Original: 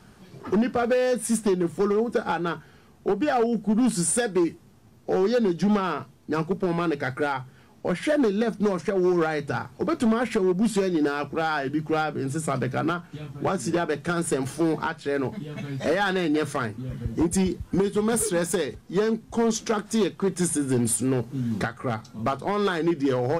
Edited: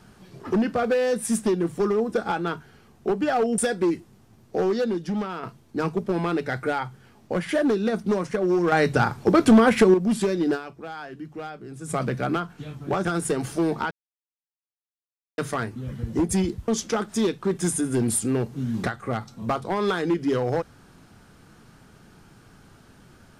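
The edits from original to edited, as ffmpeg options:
-filter_complex "[0:a]asplit=11[s0][s1][s2][s3][s4][s5][s6][s7][s8][s9][s10];[s0]atrim=end=3.582[s11];[s1]atrim=start=4.118:end=5.97,asetpts=PTS-STARTPTS,afade=t=out:st=1.032:d=0.82:c=qua:silence=0.473151[s12];[s2]atrim=start=5.97:end=9.262,asetpts=PTS-STARTPTS,afade=t=in:d=0.004:c=hsin:silence=0.473151[s13];[s3]atrim=start=9.258:end=10.482,asetpts=PTS-STARTPTS,volume=2.37[s14];[s4]atrim=start=10.478:end=11.45,asetpts=PTS-STARTPTS,afade=t=out:st=0.612:d=0.36:c=exp:silence=0.281838[s15];[s5]atrim=start=11.45:end=12.08,asetpts=PTS-STARTPTS,volume=0.282[s16];[s6]atrim=start=12.08:end=13.592,asetpts=PTS-STARTPTS,afade=t=in:d=0.36:c=exp:silence=0.281838[s17];[s7]atrim=start=14.068:end=14.93,asetpts=PTS-STARTPTS,afade=t=out:st=0.858:d=0.004:c=hsin[s18];[s8]atrim=start=14.93:end=16.4,asetpts=PTS-STARTPTS,volume=0[s19];[s9]atrim=start=16.4:end=17.702,asetpts=PTS-STARTPTS,afade=t=in:d=0.004:c=hsin[s20];[s10]atrim=start=19.448[s21];[s12][s13]concat=n=2:v=0:a=1[s22];[s11][s22]acrossfade=d=0.004:c1=hsin:c2=hsin[s23];[s23][s14]acrossfade=d=0.004:c1=hsin:c2=hsin[s24];[s15][s16][s17]concat=n=3:v=0:a=1[s25];[s24][s25]acrossfade=d=0.004:c1=hsin:c2=hsin[s26];[s18][s19][s20]concat=n=3:v=0:a=1[s27];[s26][s27]acrossfade=d=0.004:c1=hsin:c2=hsin[s28];[s28][s21]acrossfade=d=0.004:c1=hsin:c2=hsin"

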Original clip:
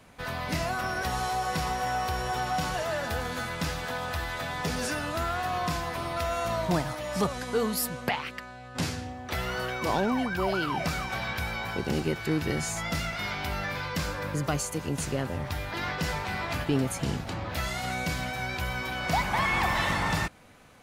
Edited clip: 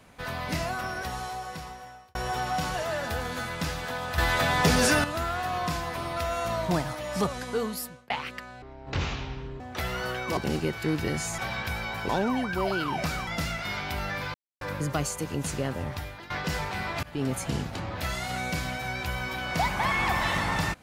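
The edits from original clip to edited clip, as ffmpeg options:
-filter_complex "[0:a]asplit=15[s0][s1][s2][s3][s4][s5][s6][s7][s8][s9][s10][s11][s12][s13][s14];[s0]atrim=end=2.15,asetpts=PTS-STARTPTS,afade=t=out:st=0.53:d=1.62[s15];[s1]atrim=start=2.15:end=4.182,asetpts=PTS-STARTPTS,afade=t=in:d=0.004:c=hsin[s16];[s2]atrim=start=4.178:end=5.042,asetpts=PTS-STARTPTS,volume=2.82[s17];[s3]atrim=start=5.038:end=8.1,asetpts=PTS-STARTPTS,afade=t=out:st=2.192:d=0.87:c=qsin[s18];[s4]atrim=start=8.1:end=8.624,asetpts=PTS-STARTPTS,afade=t=in:d=0.004:c=hsin[s19];[s5]atrim=start=8.62:end=9.14,asetpts=PTS-STARTPTS,asetrate=23373,aresample=44100[s20];[s6]atrim=start=9.136:end=9.912[s21];[s7]atrim=start=11.798:end=12.812[s22];[s8]atrim=start=11.088:end=11.802[s23];[s9]atrim=start=9.908:end=11.092[s24];[s10]atrim=start=12.808:end=13.88,asetpts=PTS-STARTPTS,afade=t=out:st=1.068:d=0.004:c=hsin[s25];[s11]atrim=start=13.88:end=14.15,asetpts=PTS-STARTPTS,volume=0[s26];[s12]atrim=start=14.15:end=15.84,asetpts=PTS-STARTPTS,afade=t=in:d=0.004:c=hsin,afade=t=out:st=1.26:d=0.43:silence=0.141254[s27];[s13]atrim=start=15.84:end=16.57,asetpts=PTS-STARTPTS,afade=t=in:d=0.004:c=hsin:silence=0.141254,afade=t=out:st=0.726:d=0.004:c=hsin:silence=0.0749894[s28];[s14]atrim=start=16.57,asetpts=PTS-STARTPTS,afade=t=in:d=0.3:silence=0.0749894[s29];[s15][s16]concat=n=2:v=0:a=1[s30];[s30][s17]acrossfade=d=0.004:c1=hsin:c2=hsin[s31];[s18][s19]concat=n=2:v=0:a=1[s32];[s31][s32]acrossfade=d=0.004:c1=hsin:c2=hsin[s33];[s33][s20]acrossfade=d=0.004:c1=hsin:c2=hsin[s34];[s34][s21]acrossfade=d=0.004:c1=hsin:c2=hsin[s35];[s35][s22]acrossfade=d=0.004:c1=hsin:c2=hsin[s36];[s36][s23]acrossfade=d=0.004:c1=hsin:c2=hsin[s37];[s37][s24]acrossfade=d=0.004:c1=hsin:c2=hsin[s38];[s25][s26][s27][s28][s29]concat=n=5:v=0:a=1[s39];[s38][s39]acrossfade=d=0.004:c1=hsin:c2=hsin"

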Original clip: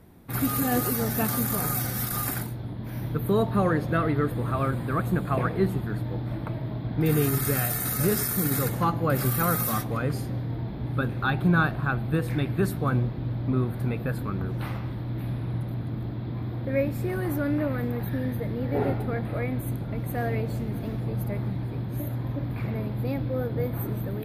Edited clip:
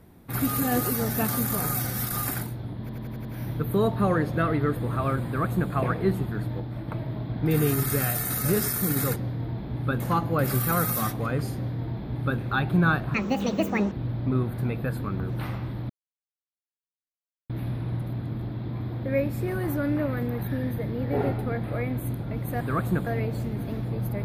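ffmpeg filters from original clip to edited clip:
-filter_complex "[0:a]asplit=15[s0][s1][s2][s3][s4][s5][s6][s7][s8][s9][s10][s11][s12][s13][s14];[s0]atrim=end=2.892[s15];[s1]atrim=start=2.798:end=2.892[s16];[s2]atrim=start=2.798:end=2.892[s17];[s3]atrim=start=2.798:end=2.892[s18];[s4]atrim=start=2.798:end=2.892[s19];[s5]atrim=start=2.798:end=6.152[s20];[s6]atrim=start=6.148:end=6.432,asetpts=PTS-STARTPTS,volume=0.708[s21];[s7]atrim=start=6.428:end=8.712[s22];[s8]atrim=start=10.258:end=11.102[s23];[s9]atrim=start=8.708:end=11.854[s24];[s10]atrim=start=11.85:end=13.13,asetpts=PTS-STARTPTS,asetrate=72765,aresample=44100[s25];[s11]atrim=start=13.126:end=15.11,asetpts=PTS-STARTPTS,afade=t=out:st=1.98:d=0.004:c=hsin,apad=pad_dur=1.6[s26];[s12]atrim=start=15.11:end=20.222,asetpts=PTS-STARTPTS,afade=t=in:d=0.004:c=hsin[s27];[s13]atrim=start=4.808:end=5.272[s28];[s14]atrim=start=20.218[s29];[s15][s16]acrossfade=d=0.004:c1=hsin:c2=hsin[s30];[s30][s17]acrossfade=d=0.004:c1=hsin:c2=hsin[s31];[s31][s18]acrossfade=d=0.004:c1=hsin:c2=hsin[s32];[s32][s19]acrossfade=d=0.004:c1=hsin:c2=hsin[s33];[s33][s20]acrossfade=d=0.004:c1=hsin:c2=hsin[s34];[s34][s21]acrossfade=d=0.004:c1=hsin:c2=hsin[s35];[s35][s22]acrossfade=d=0.004:c1=hsin:c2=hsin[s36];[s36][s23]acrossfade=d=0.004:c1=hsin:c2=hsin[s37];[s37][s24]acrossfade=d=0.004:c1=hsin:c2=hsin[s38];[s38][s25]acrossfade=d=0.004:c1=hsin:c2=hsin[s39];[s26][s27]concat=n=2:v=0:a=1[s40];[s39][s40]acrossfade=d=0.004:c1=hsin:c2=hsin[s41];[s41][s28]acrossfade=d=0.004:c1=hsin:c2=hsin[s42];[s42][s29]acrossfade=d=0.004:c1=hsin:c2=hsin"

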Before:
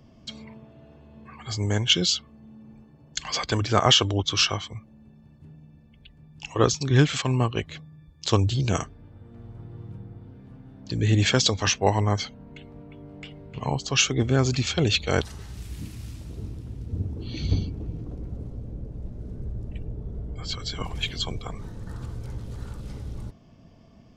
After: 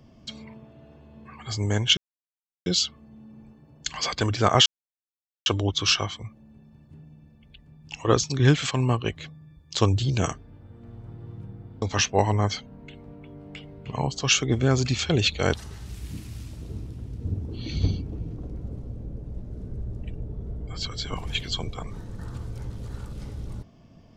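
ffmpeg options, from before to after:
-filter_complex "[0:a]asplit=4[s0][s1][s2][s3];[s0]atrim=end=1.97,asetpts=PTS-STARTPTS,afade=t=out:st=1.966:d=0.004:c=hsin,apad=pad_dur=0.69[s4];[s1]atrim=start=1.97:end=3.97,asetpts=PTS-STARTPTS,afade=t=in:d=0.004:c=hsin,afade=t=out:st=1.996:d=0.004:c=hsin,apad=pad_dur=0.8[s5];[s2]atrim=start=3.97:end=10.332,asetpts=PTS-STARTPTS,afade=t=in:d=0.004:c=hsin[s6];[s3]atrim=start=11.498[s7];[s4][s5][s6]concat=n=3:v=0:a=1[s8];[s8][s7]acrossfade=d=0.004:c1=hsin:c2=hsin"

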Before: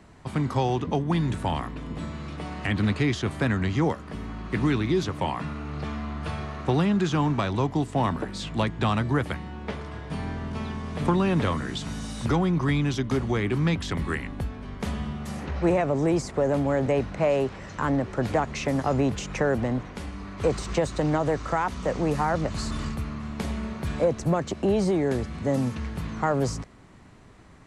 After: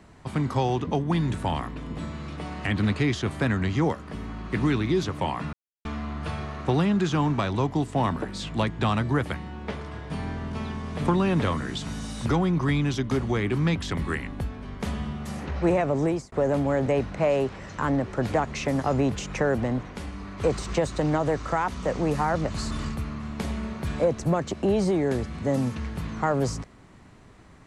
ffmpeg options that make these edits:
-filter_complex "[0:a]asplit=4[s0][s1][s2][s3];[s0]atrim=end=5.53,asetpts=PTS-STARTPTS,afade=t=out:st=5.526:d=0.004:c=hsin[s4];[s1]atrim=start=5.53:end=5.85,asetpts=PTS-STARTPTS,volume=0[s5];[s2]atrim=start=5.85:end=16.32,asetpts=PTS-STARTPTS,afade=t=in:d=0.004:c=hsin,afade=t=out:st=10.19:d=0.28[s6];[s3]atrim=start=16.32,asetpts=PTS-STARTPTS,afade=t=in:d=0.004:c=hsin[s7];[s4][s5][s6][s7]concat=n=4:v=0:a=1"

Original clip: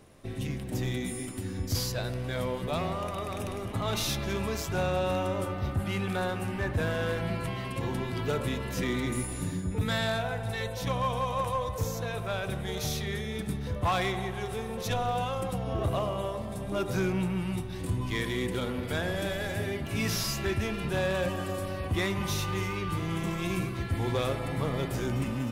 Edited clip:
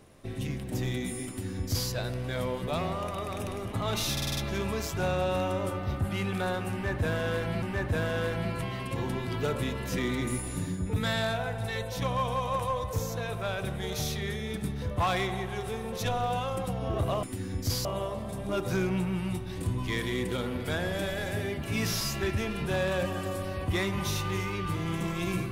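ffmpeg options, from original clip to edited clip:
-filter_complex "[0:a]asplit=9[s0][s1][s2][s3][s4][s5][s6][s7][s8];[s0]atrim=end=4.172[s9];[s1]atrim=start=4.118:end=4.172[s10];[s2]atrim=start=4.118:end=4.172[s11];[s3]atrim=start=4.118:end=4.172[s12];[s4]atrim=start=4.118:end=4.172[s13];[s5]atrim=start=4.118:end=7.372[s14];[s6]atrim=start=6.468:end=16.082[s15];[s7]atrim=start=1.278:end=1.902[s16];[s8]atrim=start=16.078[s17];[s9][s10]acrossfade=d=0.004:c1=hsin:c2=hsin[s18];[s18][s11]acrossfade=d=0.004:c1=hsin:c2=hsin[s19];[s19][s12]acrossfade=d=0.004:c1=hsin:c2=hsin[s20];[s20][s13]acrossfade=d=0.004:c1=hsin:c2=hsin[s21];[s21][s14]acrossfade=d=0.004:c1=hsin:c2=hsin[s22];[s22][s15]acrossfade=d=0.004:c1=hsin:c2=hsin[s23];[s23][s16]acrossfade=d=0.004:c1=hsin:c2=hsin[s24];[s24][s17]acrossfade=d=0.004:c1=hsin:c2=hsin"

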